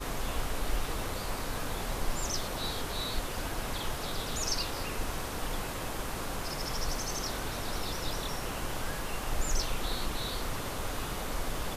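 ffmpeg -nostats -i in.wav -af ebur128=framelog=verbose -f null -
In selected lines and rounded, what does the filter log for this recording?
Integrated loudness:
  I:         -35.0 LUFS
  Threshold: -45.0 LUFS
Loudness range:
  LRA:         1.1 LU
  Threshold: -54.9 LUFS
  LRA low:   -35.3 LUFS
  LRA high:  -34.2 LUFS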